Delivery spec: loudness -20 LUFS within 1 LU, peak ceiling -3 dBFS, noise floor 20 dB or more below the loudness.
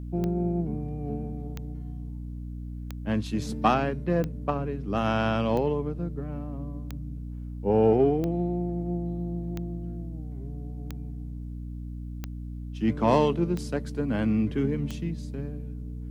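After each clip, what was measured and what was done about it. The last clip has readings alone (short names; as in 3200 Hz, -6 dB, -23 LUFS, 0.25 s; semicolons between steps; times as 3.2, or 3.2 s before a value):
clicks 12; hum 60 Hz; harmonics up to 300 Hz; hum level -34 dBFS; loudness -29.5 LUFS; peak -7.0 dBFS; loudness target -20.0 LUFS
-> de-click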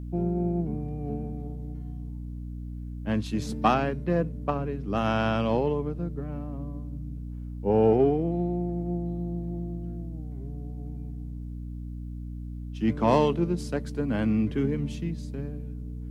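clicks 0; hum 60 Hz; harmonics up to 300 Hz; hum level -34 dBFS
-> notches 60/120/180/240/300 Hz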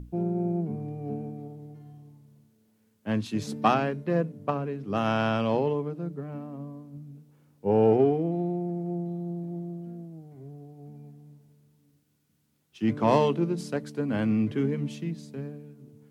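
hum none; loudness -28.0 LUFS; peak -7.0 dBFS; loudness target -20.0 LUFS
-> gain +8 dB; limiter -3 dBFS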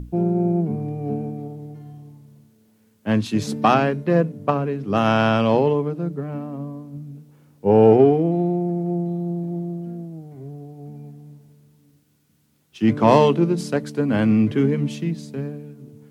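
loudness -20.5 LUFS; peak -3.0 dBFS; noise floor -61 dBFS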